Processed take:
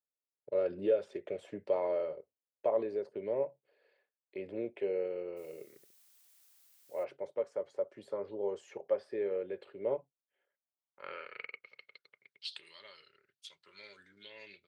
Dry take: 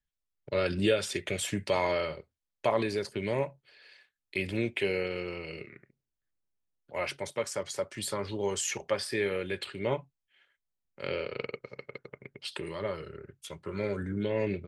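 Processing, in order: hard clipper -16.5 dBFS, distortion -35 dB; band-pass sweep 510 Hz -> 4.1 kHz, 10.48–11.96 s; 5.36–7.03 s: added noise blue -65 dBFS

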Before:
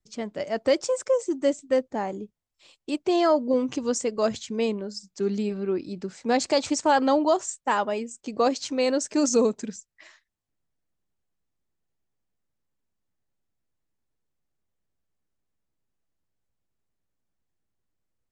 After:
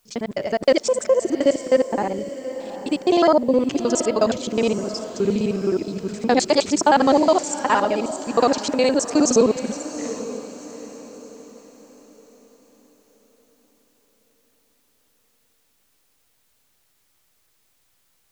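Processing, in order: time reversed locally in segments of 52 ms; word length cut 12-bit, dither triangular; echo that smears into a reverb 778 ms, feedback 40%, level -12 dB; trim +5.5 dB

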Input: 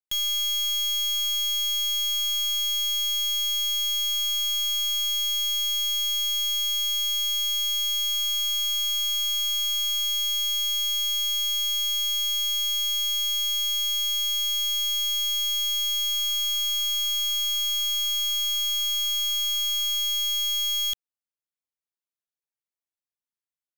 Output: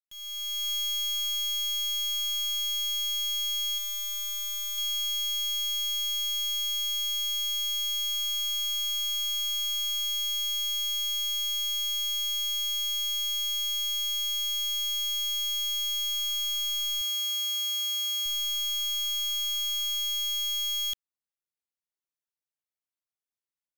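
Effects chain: fade-in on the opening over 0.71 s; 3.78–4.78 s: peaking EQ 3.8 kHz -7 dB 0.81 oct; 17.01–18.26 s: high-pass 58 Hz; trim -4 dB

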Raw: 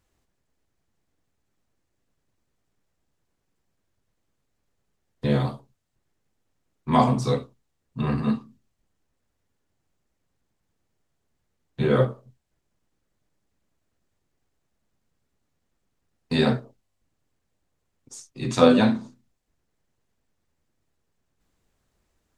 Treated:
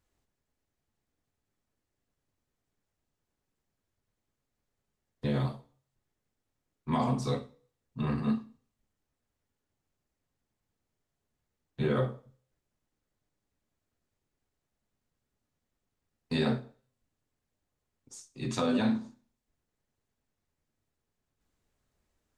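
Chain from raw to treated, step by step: peak limiter -12.5 dBFS, peak gain reduction 9.5 dB; on a send: reverberation RT60 0.45 s, pre-delay 3 ms, DRR 10.5 dB; on the sum: trim -6.5 dB

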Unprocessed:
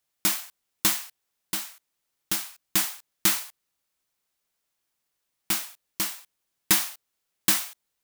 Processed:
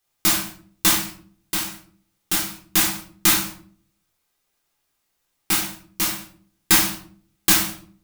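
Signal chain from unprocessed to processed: simulated room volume 480 m³, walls furnished, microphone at 3.8 m; trim +1.5 dB

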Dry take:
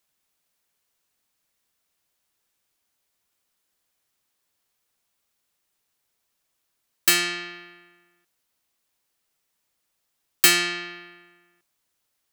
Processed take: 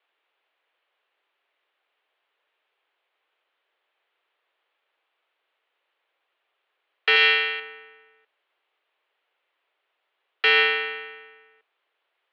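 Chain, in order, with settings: 7.16–7.60 s: treble shelf 2.2 kHz +10.5 dB; mistuned SSB +93 Hz 290–3200 Hz; peak limiter -16 dBFS, peak gain reduction 7 dB; trim +7.5 dB

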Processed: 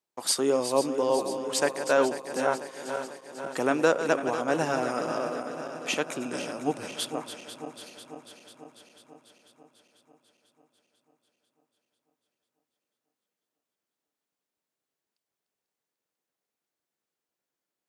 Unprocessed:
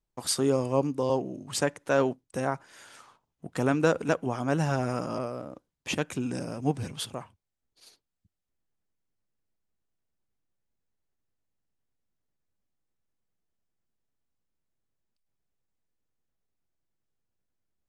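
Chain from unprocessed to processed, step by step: backward echo that repeats 247 ms, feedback 78%, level -10 dB; high-pass 330 Hz 12 dB/octave; trim +2.5 dB

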